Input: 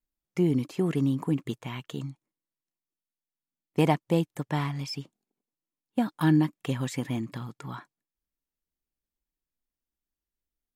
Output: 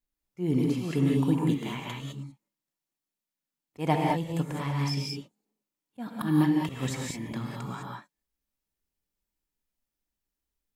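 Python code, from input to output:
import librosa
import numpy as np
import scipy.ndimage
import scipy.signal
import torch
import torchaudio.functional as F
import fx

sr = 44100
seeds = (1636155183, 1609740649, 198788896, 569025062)

y = fx.auto_swell(x, sr, attack_ms=164.0)
y = fx.rev_gated(y, sr, seeds[0], gate_ms=230, shape='rising', drr_db=-1.5)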